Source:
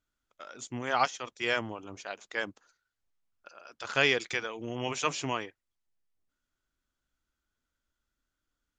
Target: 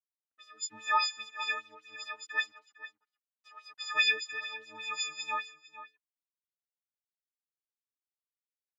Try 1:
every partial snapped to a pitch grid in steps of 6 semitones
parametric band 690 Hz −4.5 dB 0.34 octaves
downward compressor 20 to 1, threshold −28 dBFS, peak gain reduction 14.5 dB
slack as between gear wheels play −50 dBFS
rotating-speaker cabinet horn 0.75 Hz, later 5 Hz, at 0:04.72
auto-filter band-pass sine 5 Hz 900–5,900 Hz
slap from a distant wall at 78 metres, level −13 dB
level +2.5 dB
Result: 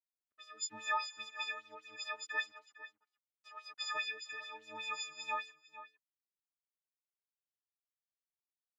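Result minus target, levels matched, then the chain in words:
downward compressor: peak gain reduction +14.5 dB; 500 Hz band +5.0 dB
every partial snapped to a pitch grid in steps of 6 semitones
parametric band 690 Hz −15 dB 0.34 octaves
slack as between gear wheels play −50 dBFS
rotating-speaker cabinet horn 0.75 Hz, later 5 Hz, at 0:04.72
auto-filter band-pass sine 5 Hz 900–5,900 Hz
slap from a distant wall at 78 metres, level −13 dB
level +2.5 dB

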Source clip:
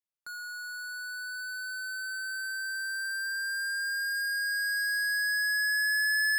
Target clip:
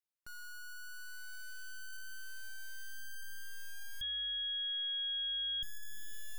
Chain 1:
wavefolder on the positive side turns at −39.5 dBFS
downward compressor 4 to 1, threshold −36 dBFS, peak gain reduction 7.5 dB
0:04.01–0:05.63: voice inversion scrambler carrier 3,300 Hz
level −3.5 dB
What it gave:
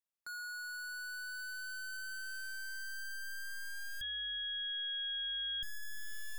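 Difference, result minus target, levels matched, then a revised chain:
wavefolder on the positive side: distortion −9 dB
wavefolder on the positive side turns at −46.5 dBFS
downward compressor 4 to 1, threshold −36 dBFS, peak gain reduction 7.5 dB
0:04.01–0:05.63: voice inversion scrambler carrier 3,300 Hz
level −3.5 dB

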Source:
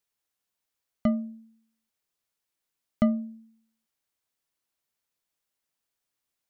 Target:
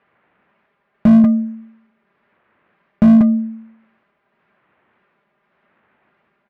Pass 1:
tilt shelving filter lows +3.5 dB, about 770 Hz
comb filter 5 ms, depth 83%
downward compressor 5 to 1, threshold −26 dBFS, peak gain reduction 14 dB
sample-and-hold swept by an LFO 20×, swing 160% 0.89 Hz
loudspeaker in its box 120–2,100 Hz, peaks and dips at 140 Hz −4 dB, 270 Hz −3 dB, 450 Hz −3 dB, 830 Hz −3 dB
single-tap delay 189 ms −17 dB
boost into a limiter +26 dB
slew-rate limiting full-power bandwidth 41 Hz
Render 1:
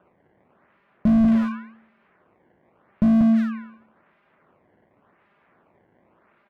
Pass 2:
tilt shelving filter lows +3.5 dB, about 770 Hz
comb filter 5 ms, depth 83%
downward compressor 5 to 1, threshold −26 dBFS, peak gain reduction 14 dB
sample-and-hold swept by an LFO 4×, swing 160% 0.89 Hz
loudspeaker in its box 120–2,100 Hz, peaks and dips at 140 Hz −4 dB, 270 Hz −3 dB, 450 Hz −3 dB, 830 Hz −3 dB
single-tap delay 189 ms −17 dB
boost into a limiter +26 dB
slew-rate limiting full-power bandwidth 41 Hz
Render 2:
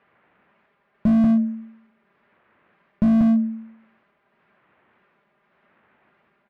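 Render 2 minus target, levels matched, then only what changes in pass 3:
slew-rate limiting: distortion +13 dB
change: slew-rate limiting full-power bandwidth 111 Hz

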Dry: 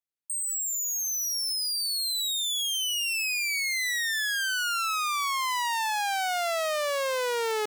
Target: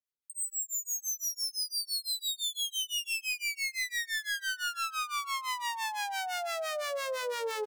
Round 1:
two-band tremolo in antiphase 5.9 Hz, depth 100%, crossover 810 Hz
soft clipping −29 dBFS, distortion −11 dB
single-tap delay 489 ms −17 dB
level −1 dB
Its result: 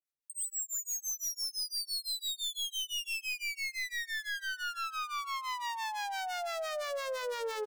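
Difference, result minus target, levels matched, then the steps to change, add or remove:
soft clipping: distortion +13 dB
change: soft clipping −19 dBFS, distortion −24 dB

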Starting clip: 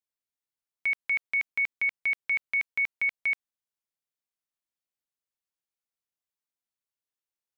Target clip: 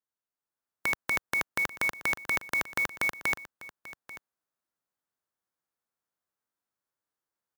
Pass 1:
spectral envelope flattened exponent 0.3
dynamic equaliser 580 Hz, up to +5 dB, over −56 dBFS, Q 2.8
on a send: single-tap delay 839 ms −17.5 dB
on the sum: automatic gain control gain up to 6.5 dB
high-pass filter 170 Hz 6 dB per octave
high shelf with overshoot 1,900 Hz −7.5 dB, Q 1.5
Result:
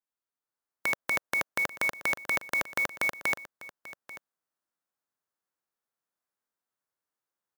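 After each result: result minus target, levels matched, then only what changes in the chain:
125 Hz band −3.0 dB; 500 Hz band +2.5 dB
change: high-pass filter 81 Hz 6 dB per octave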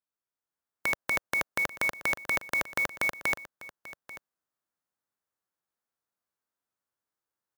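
500 Hz band +3.0 dB
remove: dynamic equaliser 580 Hz, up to +5 dB, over −56 dBFS, Q 2.8

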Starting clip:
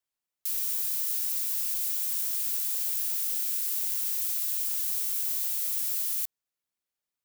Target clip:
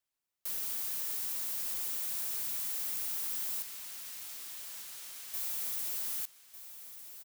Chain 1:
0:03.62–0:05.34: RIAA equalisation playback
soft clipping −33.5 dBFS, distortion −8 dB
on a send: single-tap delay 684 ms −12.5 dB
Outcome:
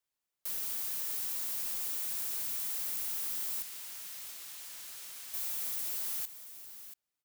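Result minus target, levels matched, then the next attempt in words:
echo 516 ms early
0:03.62–0:05.34: RIAA equalisation playback
soft clipping −33.5 dBFS, distortion −8 dB
on a send: single-tap delay 1,200 ms −12.5 dB

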